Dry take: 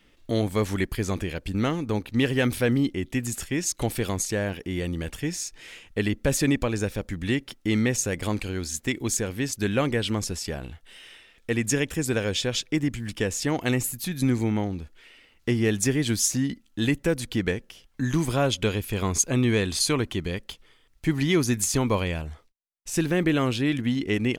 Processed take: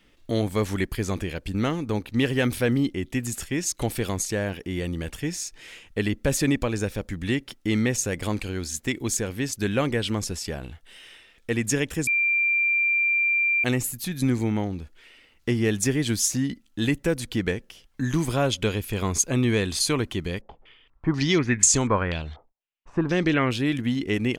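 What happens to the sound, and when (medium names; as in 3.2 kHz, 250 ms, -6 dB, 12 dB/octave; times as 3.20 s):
12.07–13.64 s: bleep 2.37 kHz -19 dBFS
20.41–23.51 s: step-sequenced low-pass 4.1 Hz 790–7300 Hz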